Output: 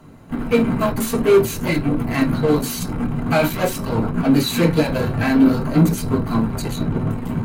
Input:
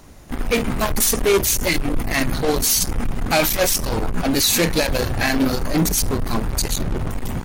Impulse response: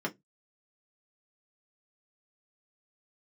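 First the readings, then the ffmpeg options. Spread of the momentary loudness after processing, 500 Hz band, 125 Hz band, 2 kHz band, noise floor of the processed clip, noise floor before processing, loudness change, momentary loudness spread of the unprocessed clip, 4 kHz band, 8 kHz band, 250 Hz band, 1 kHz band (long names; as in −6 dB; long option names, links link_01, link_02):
8 LU, +2.5 dB, +4.5 dB, −3.0 dB, −29 dBFS, −29 dBFS, +0.5 dB, 8 LU, −7.0 dB, −11.5 dB, +6.0 dB, 0.0 dB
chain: -filter_complex "[1:a]atrim=start_sample=2205,asetrate=32634,aresample=44100[link_01];[0:a][link_01]afir=irnorm=-1:irlink=0,volume=-7.5dB"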